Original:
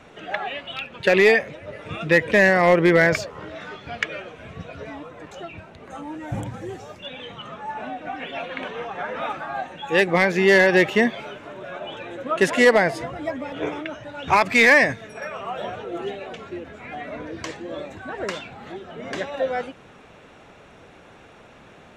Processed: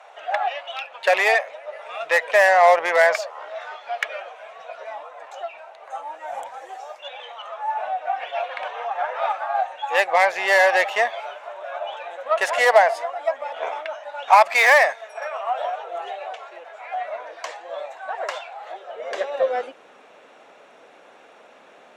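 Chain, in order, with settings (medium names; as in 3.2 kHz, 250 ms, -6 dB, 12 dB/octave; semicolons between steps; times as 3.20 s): resonant low shelf 410 Hz -10.5 dB, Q 1.5; Chebyshev shaper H 6 -24 dB, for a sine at -7 dBFS; high-pass sweep 730 Hz -> 260 Hz, 18.52–19.91 s; trim -2 dB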